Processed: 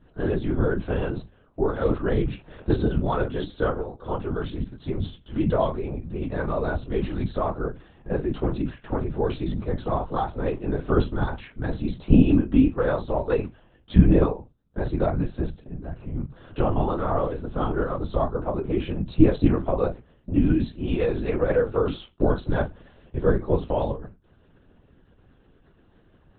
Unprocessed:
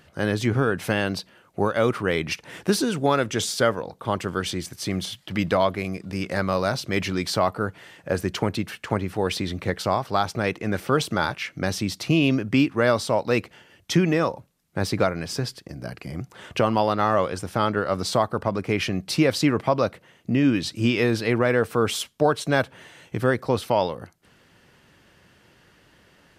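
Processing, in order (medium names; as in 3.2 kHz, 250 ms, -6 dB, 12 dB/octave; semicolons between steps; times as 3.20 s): reverberation RT60 0.20 s, pre-delay 3 ms, DRR -6 dB; LPC vocoder at 8 kHz whisper; trim -16 dB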